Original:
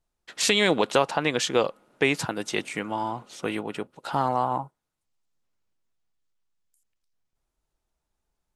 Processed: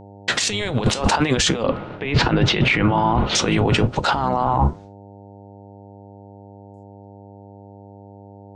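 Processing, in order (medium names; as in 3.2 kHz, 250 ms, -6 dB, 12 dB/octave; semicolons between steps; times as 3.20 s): octave divider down 1 oct, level +1 dB; expander -53 dBFS; low-pass 8.8 kHz 24 dB/octave, from 1.63 s 3.7 kHz, from 3.35 s 6.7 kHz; compressor with a negative ratio -36 dBFS, ratio -1; flange 0.75 Hz, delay 5 ms, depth 4.9 ms, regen -74%; mains buzz 100 Hz, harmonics 9, -65 dBFS -3 dB/octave; loudness maximiser +30 dB; trim -7 dB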